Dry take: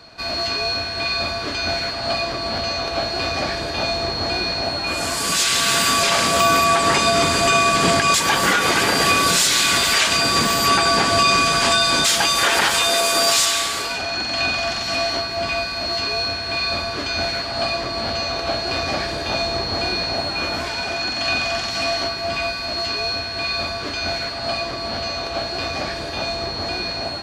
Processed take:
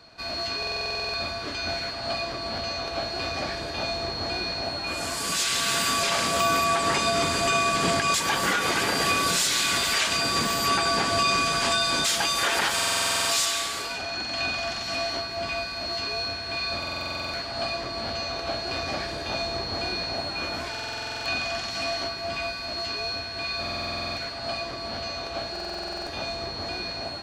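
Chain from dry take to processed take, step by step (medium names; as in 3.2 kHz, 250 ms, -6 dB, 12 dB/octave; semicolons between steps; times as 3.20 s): buffer glitch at 0.58/12.74/16.78/20.70/23.61/25.51 s, samples 2048, times 11; trim -7 dB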